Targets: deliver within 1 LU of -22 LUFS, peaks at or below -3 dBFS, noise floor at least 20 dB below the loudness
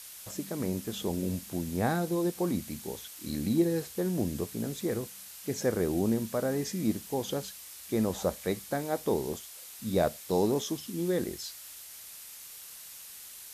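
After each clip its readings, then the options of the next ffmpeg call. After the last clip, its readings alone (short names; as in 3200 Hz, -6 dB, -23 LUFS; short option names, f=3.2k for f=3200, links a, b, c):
noise floor -47 dBFS; noise floor target -52 dBFS; loudness -32.0 LUFS; peak -13.0 dBFS; loudness target -22.0 LUFS
-> -af "afftdn=nr=6:nf=-47"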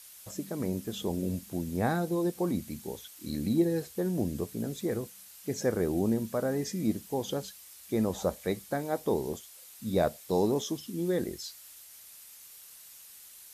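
noise floor -52 dBFS; loudness -32.0 LUFS; peak -13.5 dBFS; loudness target -22.0 LUFS
-> -af "volume=10dB"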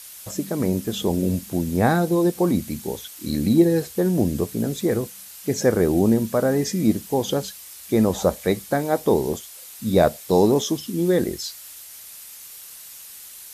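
loudness -22.0 LUFS; peak -3.5 dBFS; noise floor -42 dBFS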